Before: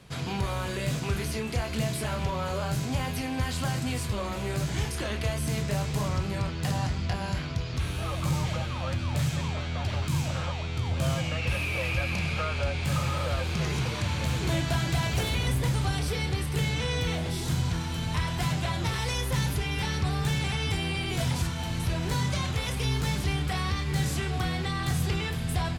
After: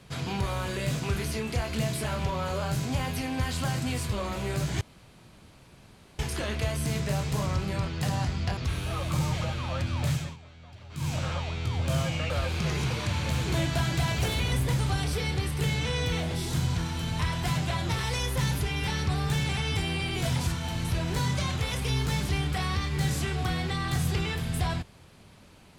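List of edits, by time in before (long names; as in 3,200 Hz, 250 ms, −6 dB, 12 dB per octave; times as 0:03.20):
0:04.81: splice in room tone 1.38 s
0:07.19–0:07.69: remove
0:09.24–0:10.26: duck −18 dB, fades 0.25 s
0:11.42–0:13.25: remove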